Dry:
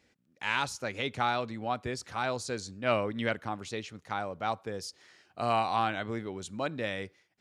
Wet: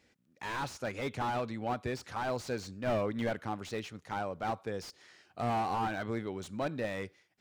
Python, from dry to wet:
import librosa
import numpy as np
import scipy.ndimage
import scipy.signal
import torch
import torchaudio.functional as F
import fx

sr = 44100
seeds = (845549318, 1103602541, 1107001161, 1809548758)

y = fx.slew_limit(x, sr, full_power_hz=29.0)